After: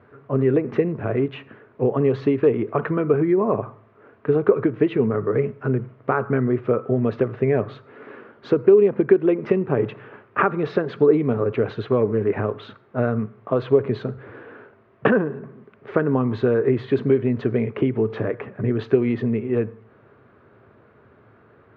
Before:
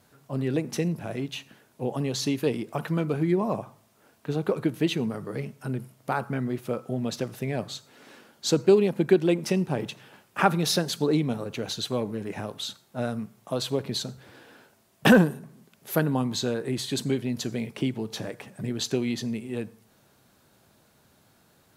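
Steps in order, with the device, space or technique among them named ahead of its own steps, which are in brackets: bass amplifier (compression 5:1, threshold -25 dBFS, peak gain reduction 12.5 dB; cabinet simulation 60–2100 Hz, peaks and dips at 110 Hz +5 dB, 170 Hz -7 dB, 420 Hz +9 dB, 820 Hz -5 dB, 1.2 kHz +5 dB); trim +8.5 dB

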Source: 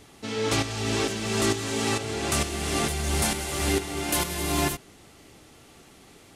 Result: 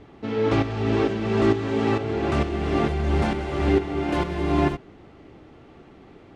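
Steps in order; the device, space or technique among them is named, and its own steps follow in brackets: phone in a pocket (low-pass 3.2 kHz 12 dB/octave; peaking EQ 340 Hz +3 dB 0.56 oct; treble shelf 2 kHz -11.5 dB); trim +5 dB

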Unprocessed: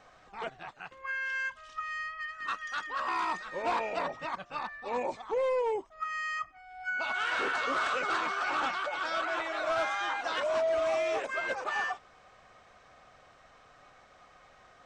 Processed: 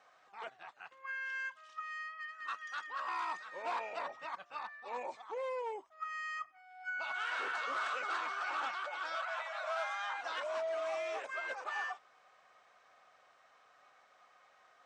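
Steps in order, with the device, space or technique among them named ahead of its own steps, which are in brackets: filter by subtraction (in parallel: low-pass 1 kHz 12 dB/octave + polarity flip); 9.15–10.18 s: on the sum: steep high-pass 490 Hz 96 dB/octave; trim -8 dB

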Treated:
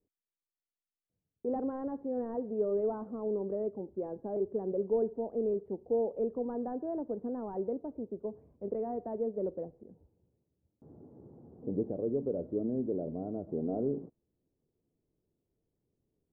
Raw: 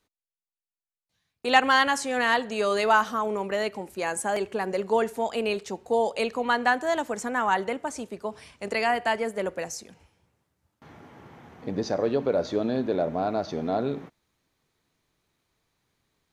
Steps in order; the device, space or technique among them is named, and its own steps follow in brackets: 11.91–13.49 s: peaking EQ 710 Hz -5 dB 2.7 oct; overdriven synthesiser ladder filter (saturation -15.5 dBFS, distortion -15 dB; four-pole ladder low-pass 550 Hz, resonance 30%); trim +2 dB

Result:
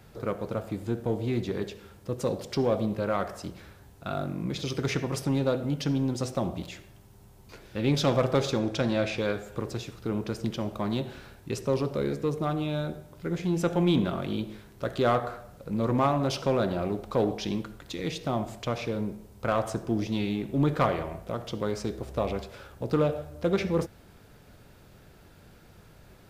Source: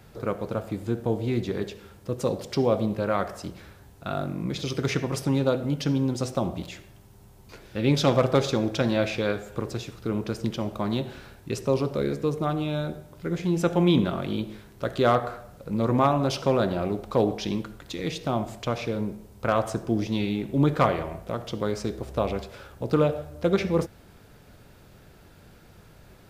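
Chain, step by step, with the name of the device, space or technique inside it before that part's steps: 8.59–9.18 s: low-pass 11 kHz 12 dB/octave; parallel distortion (in parallel at -7 dB: hard clipper -22.5 dBFS, distortion -8 dB); on the sum: trim -5 dB

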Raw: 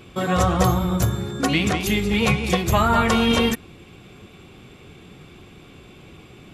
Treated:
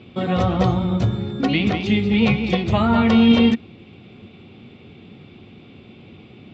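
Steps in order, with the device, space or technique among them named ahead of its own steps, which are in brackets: guitar cabinet (cabinet simulation 91–4200 Hz, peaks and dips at 100 Hz +6 dB, 230 Hz +8 dB, 1.1 kHz -6 dB, 1.6 kHz -7 dB)

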